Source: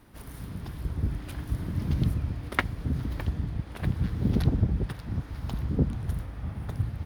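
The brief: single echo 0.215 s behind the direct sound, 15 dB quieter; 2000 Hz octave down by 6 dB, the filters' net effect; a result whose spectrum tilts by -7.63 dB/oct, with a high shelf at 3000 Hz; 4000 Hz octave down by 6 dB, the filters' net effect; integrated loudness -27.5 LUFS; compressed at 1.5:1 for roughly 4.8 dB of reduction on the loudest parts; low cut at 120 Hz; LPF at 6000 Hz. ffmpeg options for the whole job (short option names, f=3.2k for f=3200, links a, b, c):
-af "highpass=120,lowpass=6k,equalizer=f=2k:t=o:g=-7,highshelf=f=3k:g=4.5,equalizer=f=4k:t=o:g=-8,acompressor=threshold=-34dB:ratio=1.5,aecho=1:1:215:0.178,volume=9.5dB"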